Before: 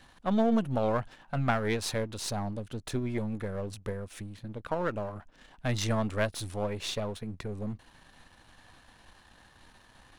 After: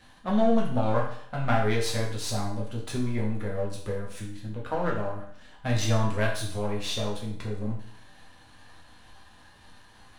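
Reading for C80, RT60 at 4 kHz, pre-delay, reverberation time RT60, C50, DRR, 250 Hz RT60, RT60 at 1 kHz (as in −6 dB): 8.5 dB, 0.60 s, 5 ms, 0.65 s, 5.5 dB, −3.0 dB, 0.60 s, 0.60 s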